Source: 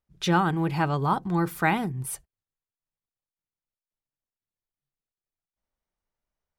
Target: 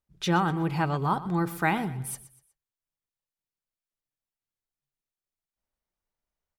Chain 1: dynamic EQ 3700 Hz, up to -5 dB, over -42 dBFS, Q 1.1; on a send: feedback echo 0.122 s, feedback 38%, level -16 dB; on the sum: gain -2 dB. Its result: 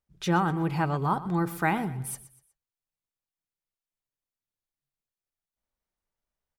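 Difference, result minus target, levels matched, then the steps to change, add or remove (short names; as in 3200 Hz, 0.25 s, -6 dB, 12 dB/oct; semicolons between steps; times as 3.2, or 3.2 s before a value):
4000 Hz band -4.0 dB
remove: dynamic EQ 3700 Hz, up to -5 dB, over -42 dBFS, Q 1.1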